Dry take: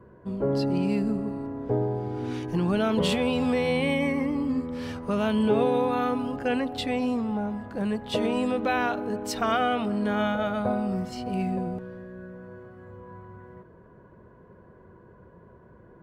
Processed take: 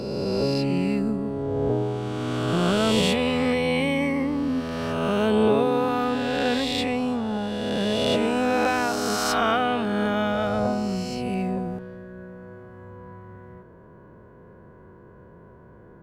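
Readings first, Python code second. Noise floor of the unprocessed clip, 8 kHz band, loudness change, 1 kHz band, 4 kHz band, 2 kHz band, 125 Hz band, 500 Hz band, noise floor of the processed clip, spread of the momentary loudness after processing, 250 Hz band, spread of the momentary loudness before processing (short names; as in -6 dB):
-53 dBFS, +8.5 dB, +3.0 dB, +3.0 dB, +7.0 dB, +4.0 dB, +2.5 dB, +3.0 dB, -49 dBFS, 19 LU, +2.0 dB, 17 LU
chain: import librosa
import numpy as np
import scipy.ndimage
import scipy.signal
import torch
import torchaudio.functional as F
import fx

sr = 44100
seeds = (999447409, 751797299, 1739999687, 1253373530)

y = fx.spec_swells(x, sr, rise_s=2.49)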